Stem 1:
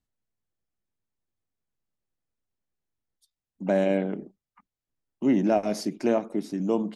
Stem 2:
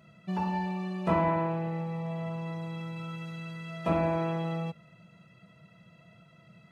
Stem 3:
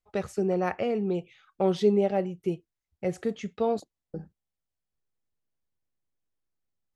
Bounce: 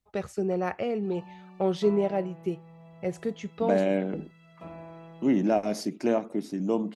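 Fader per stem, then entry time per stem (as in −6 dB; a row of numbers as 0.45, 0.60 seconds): −1.5, −16.0, −1.5 decibels; 0.00, 0.75, 0.00 seconds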